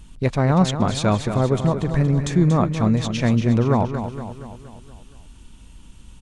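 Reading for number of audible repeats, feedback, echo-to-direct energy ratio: 5, 54%, −7.5 dB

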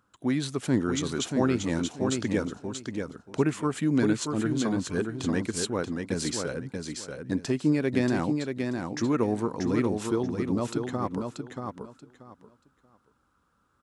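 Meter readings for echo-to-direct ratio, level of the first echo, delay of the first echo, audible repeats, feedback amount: −5.0 dB, −5.0 dB, 633 ms, 3, 21%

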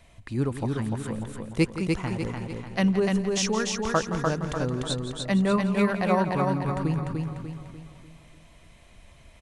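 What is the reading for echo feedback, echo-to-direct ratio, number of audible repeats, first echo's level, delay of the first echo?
repeats not evenly spaced, −2.0 dB, 9, −12.5 dB, 169 ms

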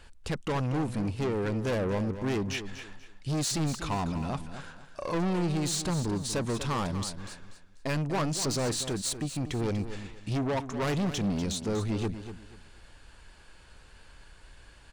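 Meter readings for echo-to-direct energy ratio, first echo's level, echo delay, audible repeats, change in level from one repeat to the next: −10.5 dB, −11.0 dB, 242 ms, 3, −11.5 dB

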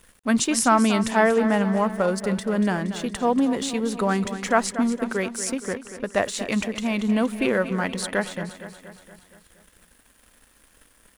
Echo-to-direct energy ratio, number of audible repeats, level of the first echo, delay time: −10.0 dB, 5, −12.0 dB, 235 ms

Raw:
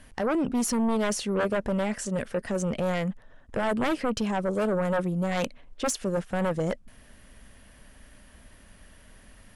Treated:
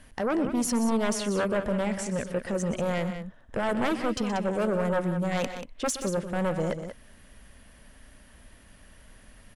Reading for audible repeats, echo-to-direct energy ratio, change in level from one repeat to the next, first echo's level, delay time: 2, −8.0 dB, repeats not evenly spaced, −13.0 dB, 123 ms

